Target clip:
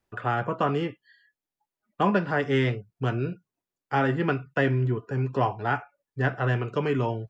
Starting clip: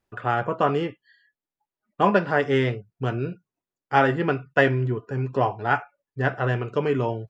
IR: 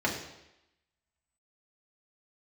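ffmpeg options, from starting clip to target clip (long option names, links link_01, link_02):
-filter_complex "[0:a]acrossover=split=400|650[link_01][link_02][link_03];[link_02]acompressor=threshold=-39dB:ratio=6[link_04];[link_03]alimiter=limit=-16.5dB:level=0:latency=1:release=332[link_05];[link_01][link_04][link_05]amix=inputs=3:normalize=0"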